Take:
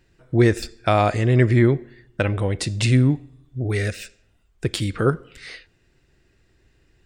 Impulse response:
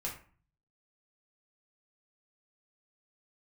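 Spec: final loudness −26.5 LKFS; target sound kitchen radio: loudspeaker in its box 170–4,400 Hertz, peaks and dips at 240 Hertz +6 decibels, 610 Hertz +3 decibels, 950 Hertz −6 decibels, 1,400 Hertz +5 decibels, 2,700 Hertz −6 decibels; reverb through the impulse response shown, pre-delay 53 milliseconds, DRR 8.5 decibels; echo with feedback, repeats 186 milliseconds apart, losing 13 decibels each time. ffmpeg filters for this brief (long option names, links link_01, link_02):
-filter_complex "[0:a]aecho=1:1:186|372|558:0.224|0.0493|0.0108,asplit=2[link_01][link_02];[1:a]atrim=start_sample=2205,adelay=53[link_03];[link_02][link_03]afir=irnorm=-1:irlink=0,volume=-10dB[link_04];[link_01][link_04]amix=inputs=2:normalize=0,highpass=170,equalizer=frequency=240:width_type=q:width=4:gain=6,equalizer=frequency=610:width_type=q:width=4:gain=3,equalizer=frequency=950:width_type=q:width=4:gain=-6,equalizer=frequency=1400:width_type=q:width=4:gain=5,equalizer=frequency=2700:width_type=q:width=4:gain=-6,lowpass=frequency=4400:width=0.5412,lowpass=frequency=4400:width=1.3066,volume=-5dB"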